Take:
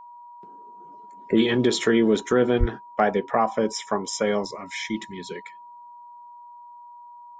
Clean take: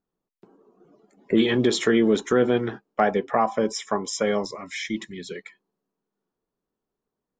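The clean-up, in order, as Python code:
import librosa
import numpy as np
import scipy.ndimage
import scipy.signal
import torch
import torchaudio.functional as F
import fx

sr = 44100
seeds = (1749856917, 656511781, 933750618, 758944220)

y = fx.notch(x, sr, hz=960.0, q=30.0)
y = fx.highpass(y, sr, hz=140.0, slope=24, at=(2.59, 2.71), fade=0.02)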